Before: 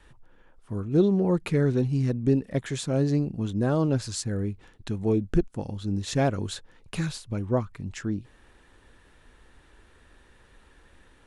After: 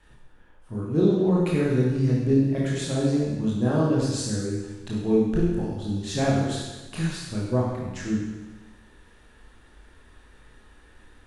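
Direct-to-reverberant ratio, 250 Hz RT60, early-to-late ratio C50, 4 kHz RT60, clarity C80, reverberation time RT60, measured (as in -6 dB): -5.0 dB, 1.2 s, 0.0 dB, 1.2 s, 2.5 dB, 1.2 s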